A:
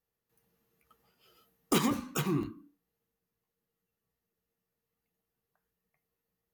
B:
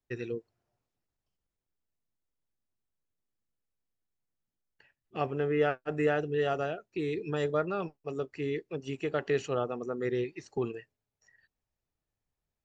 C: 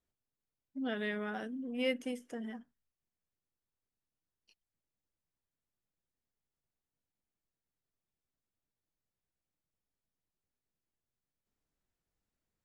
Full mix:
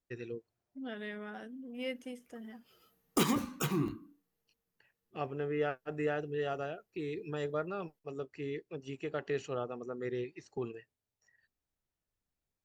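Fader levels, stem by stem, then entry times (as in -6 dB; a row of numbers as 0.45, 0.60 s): -1.5, -6.0, -5.5 dB; 1.45, 0.00, 0.00 s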